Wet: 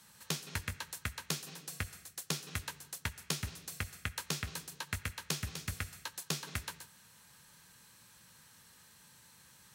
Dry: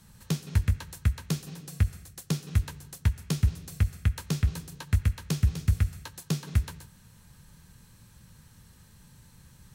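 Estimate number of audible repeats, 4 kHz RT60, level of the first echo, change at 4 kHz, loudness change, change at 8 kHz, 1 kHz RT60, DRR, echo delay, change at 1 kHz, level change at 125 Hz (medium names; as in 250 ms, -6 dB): no echo, no reverb, no echo, +1.5 dB, -10.0 dB, +1.0 dB, no reverb, no reverb, no echo, 0.0 dB, -17.0 dB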